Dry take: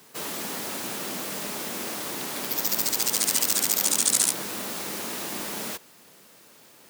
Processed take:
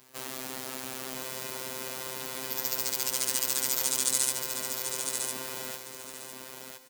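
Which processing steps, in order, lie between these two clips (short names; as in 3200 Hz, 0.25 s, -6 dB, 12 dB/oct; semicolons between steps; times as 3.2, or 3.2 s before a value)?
robotiser 130 Hz; on a send: feedback echo 1.005 s, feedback 18%, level -6 dB; on the sum: gain -3.5 dB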